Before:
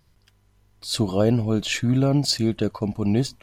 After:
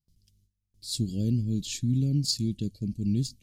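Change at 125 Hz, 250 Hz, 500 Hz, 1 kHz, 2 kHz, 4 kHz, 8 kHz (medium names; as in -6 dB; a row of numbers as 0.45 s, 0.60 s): -3.5 dB, -6.5 dB, -19.0 dB, under -35 dB, -20.0 dB, -6.5 dB, -3.5 dB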